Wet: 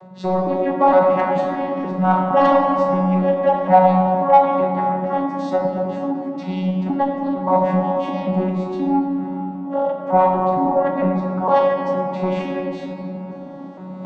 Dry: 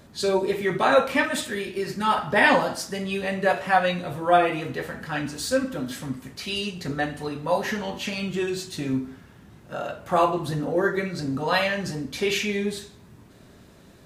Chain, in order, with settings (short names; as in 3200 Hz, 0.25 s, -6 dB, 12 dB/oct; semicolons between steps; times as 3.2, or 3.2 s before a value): arpeggiated vocoder bare fifth, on F#3, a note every 0.459 s; LPF 1800 Hz 6 dB/oct; soft clip -18.5 dBFS, distortion -13 dB; in parallel at -2 dB: compressor, threshold -37 dBFS, peak gain reduction 15 dB; on the sum: band shelf 840 Hz +11.5 dB 1.2 oct; reverse; upward compressor, threshold -30 dBFS; reverse; shoebox room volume 140 m³, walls hard, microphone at 0.35 m; ending taper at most 130 dB/s; gain +1.5 dB